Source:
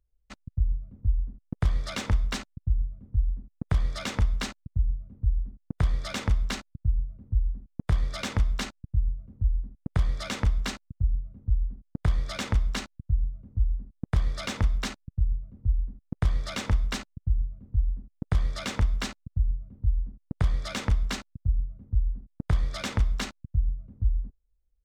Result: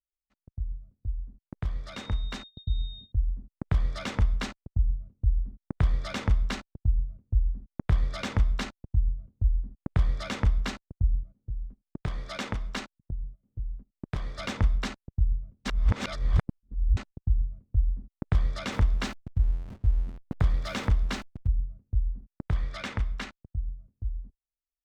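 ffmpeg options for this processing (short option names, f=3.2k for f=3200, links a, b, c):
-filter_complex "[0:a]asettb=1/sr,asplit=3[a][b][c];[a]atrim=end=1.934[d];[b]atrim=start=1.93:end=3.12,asetpts=PTS-STARTPTS,afade=t=in:d=0.004:c=qsin,afade=t=out:st=1.186:d=0.004:c=qsin,aeval=exprs='val(0)+0.0126*sin(2*PI*3700*n/s)':c=same[e];[c]atrim=start=3.116[f];[d][e]acrossfade=d=0.004:c1=hsin:c2=qsin[g];[g][f]acrossfade=d=0.004:c1=qsin:c2=hsin,asettb=1/sr,asplit=3[h][i][j];[h]atrim=end=11.234[k];[i]atrim=start=11.23:end=14.39,asetpts=PTS-STARTPTS,afade=t=in:d=0.004:c=qsin,afade=t=out:st=3.156:d=0.004:c=qsin,equalizer=f=63:t=o:w=1.7:g=-13.5[l];[j]atrim=start=14.386[m];[k][l]acrossfade=d=0.004:c1=hsin:c2=qsin[n];[n][m]acrossfade=d=0.004:c1=qsin:c2=hsin,asettb=1/sr,asplit=3[o][p][q];[o]atrim=end=18.724[r];[p]atrim=start=18.72:end=21.48,asetpts=PTS-STARTPTS,afade=t=in:d=0.004:c=qsin,afade=t=out:st=2.756:d=0.004:c=qsin,aeval=exprs='val(0)+0.5*0.0106*sgn(val(0))':c=same[s];[q]atrim=start=21.476[t];[r][s]acrossfade=d=0.004:c1=hsin:c2=qsin[u];[u][t]acrossfade=d=0.004:c1=qsin:c2=hsin,asettb=1/sr,asplit=3[v][w][x];[v]atrim=end=22.554[y];[w]atrim=start=22.55:end=23.69,asetpts=PTS-STARTPTS,afade=t=in:d=0.004:c=qsin,afade=t=out:st=1.136:d=0.004:c=qsin,equalizer=f=2k:w=0.81:g=5.5[z];[x]atrim=start=23.686[aa];[y][z]acrossfade=d=0.004:c1=hsin:c2=qsin[ab];[ab][aa]acrossfade=d=0.004:c1=qsin:c2=hsin,asplit=3[ac][ad][ae];[ac]atrim=end=15.652[af];[ad]atrim=start=15.648:end=16.972,asetpts=PTS-STARTPTS,areverse[ag];[ae]atrim=start=16.968[ah];[af][ag]acrossfade=d=0.004:c1=hsin:c2=hsin[ai];[ai][ah]acrossfade=d=0.004:c1=hsin:c2=hsin,aemphasis=mode=reproduction:type=cd,agate=range=-20dB:threshold=-39dB:ratio=16:detection=peak,dynaudnorm=f=270:g=21:m=9dB,volume=-8.5dB"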